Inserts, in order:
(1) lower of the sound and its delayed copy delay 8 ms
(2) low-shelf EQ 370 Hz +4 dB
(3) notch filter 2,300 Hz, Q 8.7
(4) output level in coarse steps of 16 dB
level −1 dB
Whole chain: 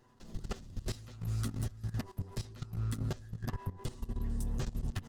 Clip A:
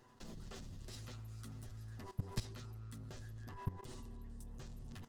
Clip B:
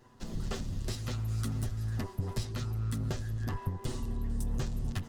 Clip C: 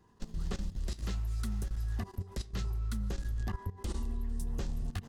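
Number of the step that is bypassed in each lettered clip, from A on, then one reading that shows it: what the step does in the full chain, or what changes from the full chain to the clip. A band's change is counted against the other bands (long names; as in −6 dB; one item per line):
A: 2, 125 Hz band −3.0 dB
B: 4, change in crest factor −2.0 dB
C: 1, change in crest factor −4.0 dB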